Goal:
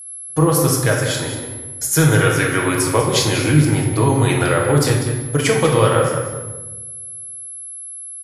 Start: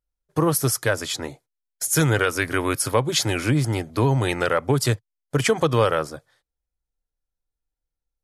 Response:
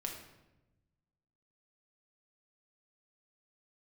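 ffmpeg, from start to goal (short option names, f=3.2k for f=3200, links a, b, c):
-filter_complex "[0:a]asplit=2[a][b];[b]adelay=193,lowpass=f=4.1k:p=1,volume=-8dB,asplit=2[c][d];[d]adelay=193,lowpass=f=4.1k:p=1,volume=0.15[e];[a][c][e]amix=inputs=3:normalize=0,aeval=exprs='val(0)+0.0158*sin(2*PI*11000*n/s)':c=same[f];[1:a]atrim=start_sample=2205,asetrate=35721,aresample=44100[g];[f][g]afir=irnorm=-1:irlink=0,volume=3.5dB"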